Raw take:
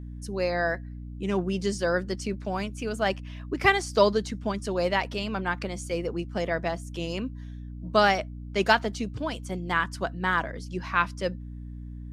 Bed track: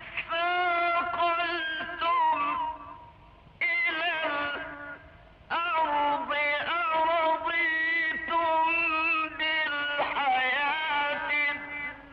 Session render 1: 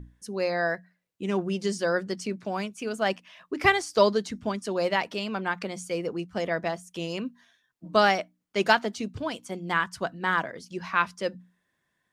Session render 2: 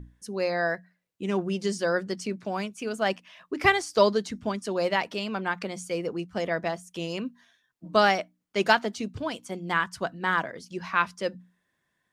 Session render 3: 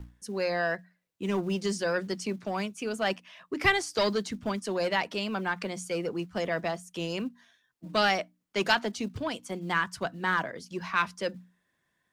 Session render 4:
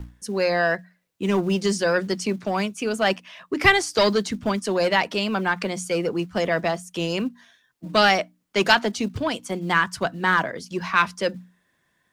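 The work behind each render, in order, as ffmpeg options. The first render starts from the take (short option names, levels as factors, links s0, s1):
-af "bandreject=f=60:t=h:w=6,bandreject=f=120:t=h:w=6,bandreject=f=180:t=h:w=6,bandreject=f=240:t=h:w=6,bandreject=f=300:t=h:w=6"
-af anull
-filter_complex "[0:a]acrossover=split=180|1500[s0][s1][s2];[s0]acrusher=bits=5:mode=log:mix=0:aa=0.000001[s3];[s1]asoftclip=type=tanh:threshold=0.0631[s4];[s3][s4][s2]amix=inputs=3:normalize=0"
-af "volume=2.37"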